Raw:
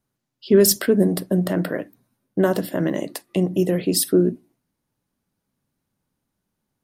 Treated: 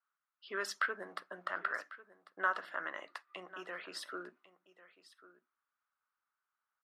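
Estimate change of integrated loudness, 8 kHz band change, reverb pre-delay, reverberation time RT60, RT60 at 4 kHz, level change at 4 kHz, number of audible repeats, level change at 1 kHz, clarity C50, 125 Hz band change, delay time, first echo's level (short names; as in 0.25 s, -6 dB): -19.5 dB, -28.0 dB, none, none, none, -18.5 dB, 1, -4.0 dB, none, under -40 dB, 1.096 s, -17.5 dB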